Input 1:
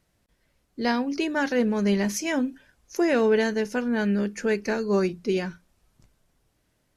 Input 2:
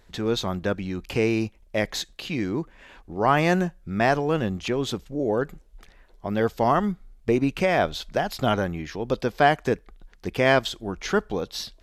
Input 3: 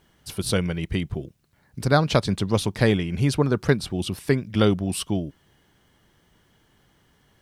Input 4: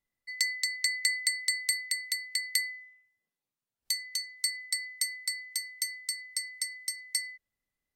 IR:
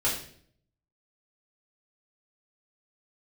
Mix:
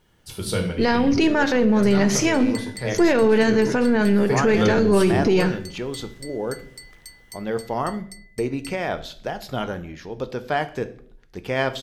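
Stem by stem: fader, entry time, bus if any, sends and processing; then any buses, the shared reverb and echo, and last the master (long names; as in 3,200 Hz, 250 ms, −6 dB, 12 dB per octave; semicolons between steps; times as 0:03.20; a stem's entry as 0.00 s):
−0.5 dB, 0.00 s, send −17.5 dB, gain on one half-wave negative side −3 dB; Bessel low-pass filter 6,500 Hz, order 2; automatic gain control gain up to 15.5 dB
−5.5 dB, 1.10 s, send −17.5 dB, no processing
0:01.81 −6.5 dB → 0:02.13 −15.5 dB → 0:03.85 −15.5 dB → 0:04.64 −3 dB, 0.00 s, send −7 dB, no processing
−9.5 dB, 1.50 s, no send, no processing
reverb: on, RT60 0.55 s, pre-delay 4 ms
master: brickwall limiter −9.5 dBFS, peak gain reduction 11 dB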